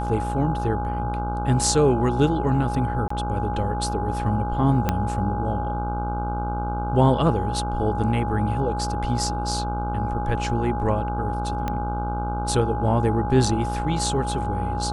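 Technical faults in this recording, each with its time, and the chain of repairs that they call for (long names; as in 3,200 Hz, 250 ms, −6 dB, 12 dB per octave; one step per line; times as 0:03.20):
mains buzz 60 Hz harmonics 26 −28 dBFS
whistle 830 Hz −28 dBFS
0:03.08–0:03.10: drop-out 24 ms
0:04.89: click −7 dBFS
0:11.68: click −13 dBFS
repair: click removal
notch filter 830 Hz, Q 30
hum removal 60 Hz, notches 26
repair the gap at 0:03.08, 24 ms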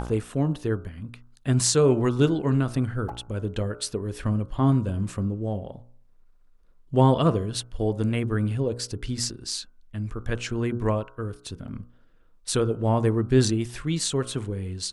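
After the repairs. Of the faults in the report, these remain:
0:04.89: click
0:11.68: click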